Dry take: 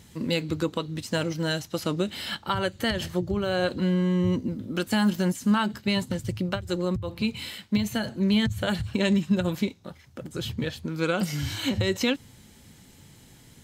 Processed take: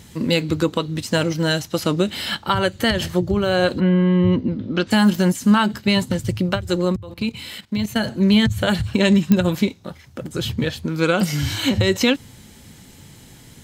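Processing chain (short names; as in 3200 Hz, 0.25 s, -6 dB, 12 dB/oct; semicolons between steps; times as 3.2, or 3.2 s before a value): 3.79–4.9 LPF 2600 Hz -> 5400 Hz 24 dB/oct; 6.92–7.96 level quantiser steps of 14 dB; pops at 9.32, -12 dBFS; gain +7.5 dB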